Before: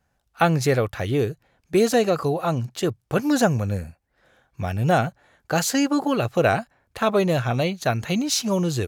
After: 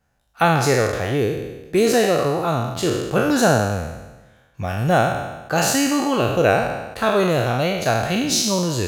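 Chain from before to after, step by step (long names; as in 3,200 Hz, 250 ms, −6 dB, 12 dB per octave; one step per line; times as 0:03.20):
peak hold with a decay on every bin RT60 1.14 s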